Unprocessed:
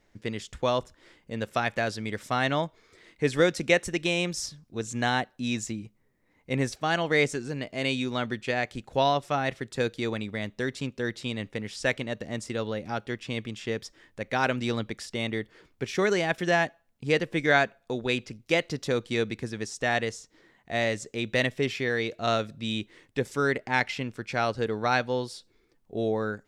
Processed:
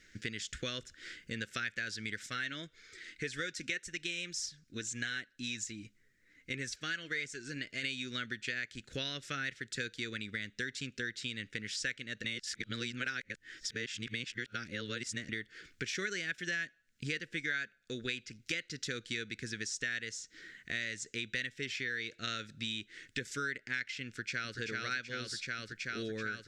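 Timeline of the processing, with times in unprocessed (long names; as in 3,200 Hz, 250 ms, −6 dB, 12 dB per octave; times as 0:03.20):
0:02.26–0:07.83: flanger 1.8 Hz, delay 1.2 ms, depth 2.7 ms, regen +59%
0:12.24–0:15.29: reverse
0:24.06–0:24.58: delay throw 380 ms, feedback 80%, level −3.5 dB
whole clip: drawn EQ curve 320 Hz 0 dB, 500 Hz −4 dB, 880 Hz −25 dB, 1,500 Hz +12 dB, 2,600 Hz +9 dB, 7,100 Hz +12 dB, 11,000 Hz +1 dB; downward compressor 4 to 1, threshold −38 dBFS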